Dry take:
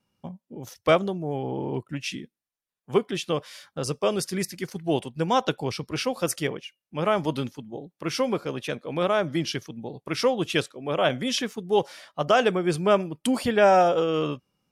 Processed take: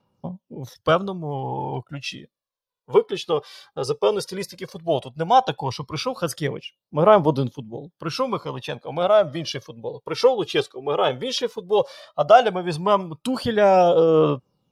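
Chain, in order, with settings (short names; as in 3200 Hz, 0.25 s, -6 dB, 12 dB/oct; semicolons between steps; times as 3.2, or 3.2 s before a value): graphic EQ 125/500/1000/2000/4000/8000 Hz +6/+7/+9/-4/+8/-4 dB; phaser 0.14 Hz, delay 2.6 ms, feedback 57%; gain -4.5 dB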